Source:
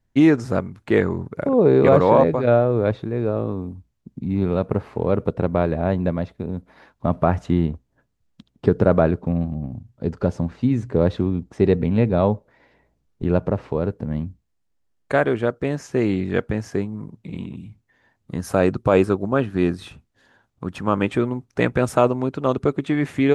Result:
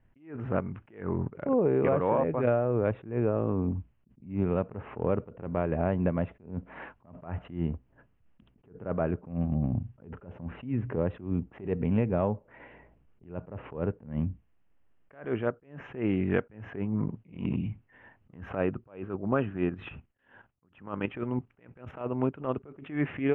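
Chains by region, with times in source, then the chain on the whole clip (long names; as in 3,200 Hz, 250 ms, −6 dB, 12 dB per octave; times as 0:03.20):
0:19.69–0:22.01: noise gate with hold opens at −52 dBFS, closes at −56 dBFS + high-shelf EQ 3,800 Hz +6 dB + output level in coarse steps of 10 dB
whole clip: elliptic low-pass filter 2,900 Hz, stop band 40 dB; downward compressor 10 to 1, threshold −29 dBFS; level that may rise only so fast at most 150 dB per second; level +7 dB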